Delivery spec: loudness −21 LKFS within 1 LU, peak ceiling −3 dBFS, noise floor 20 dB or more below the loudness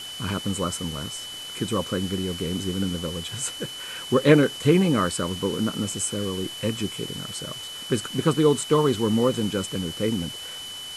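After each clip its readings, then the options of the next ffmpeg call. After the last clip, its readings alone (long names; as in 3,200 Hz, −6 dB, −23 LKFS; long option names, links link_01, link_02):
interfering tone 3,000 Hz; level of the tone −35 dBFS; background noise floor −37 dBFS; target noise floor −45 dBFS; integrated loudness −25.0 LKFS; sample peak −2.5 dBFS; target loudness −21.0 LKFS
→ -af "bandreject=frequency=3000:width=30"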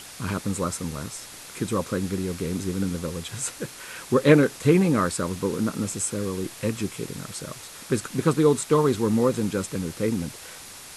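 interfering tone none found; background noise floor −43 dBFS; target noise floor −45 dBFS
→ -af "afftdn=noise_reduction=6:noise_floor=-43"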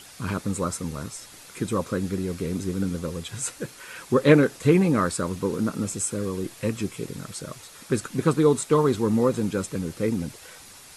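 background noise floor −47 dBFS; integrated loudness −25.0 LKFS; sample peak −2.5 dBFS; target loudness −21.0 LKFS
→ -af "volume=4dB,alimiter=limit=-3dB:level=0:latency=1"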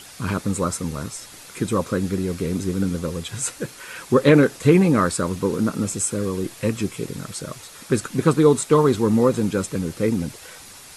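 integrated loudness −21.5 LKFS; sample peak −3.0 dBFS; background noise floor −43 dBFS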